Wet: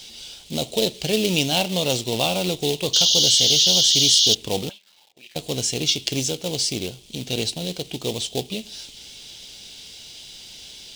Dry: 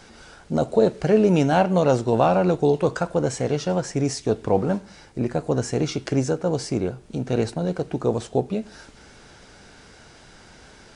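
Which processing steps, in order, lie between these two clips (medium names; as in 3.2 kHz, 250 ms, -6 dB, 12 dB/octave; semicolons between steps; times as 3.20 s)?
2.93–4.35 s: painted sound noise 2.8–6.8 kHz -31 dBFS; 4.69–5.36 s: auto-wah 590–3100 Hz, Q 3.5, up, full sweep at -19.5 dBFS; in parallel at -5 dB: companded quantiser 4-bit; on the sum: resonant high shelf 2.2 kHz +14 dB, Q 3; trim -9 dB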